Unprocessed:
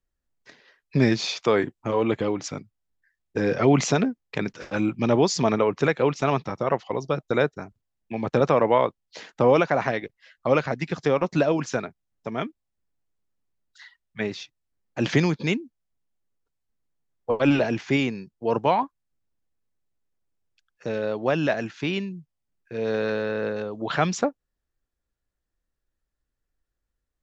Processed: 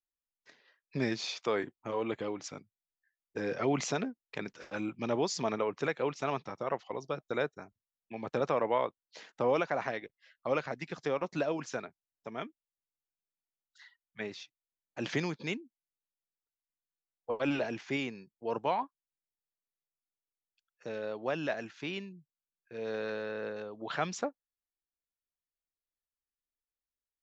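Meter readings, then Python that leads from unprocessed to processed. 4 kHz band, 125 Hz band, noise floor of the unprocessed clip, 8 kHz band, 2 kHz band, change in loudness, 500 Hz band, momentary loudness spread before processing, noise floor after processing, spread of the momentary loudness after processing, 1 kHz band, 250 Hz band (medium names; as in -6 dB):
-9.0 dB, -15.0 dB, -82 dBFS, no reading, -9.0 dB, -11.0 dB, -10.5 dB, 15 LU, under -85 dBFS, 14 LU, -9.5 dB, -12.5 dB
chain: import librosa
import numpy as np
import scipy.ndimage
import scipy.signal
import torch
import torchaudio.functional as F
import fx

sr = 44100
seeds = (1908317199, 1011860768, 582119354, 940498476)

y = fx.noise_reduce_blind(x, sr, reduce_db=8)
y = fx.low_shelf(y, sr, hz=210.0, db=-9.0)
y = y * 10.0 ** (-9.0 / 20.0)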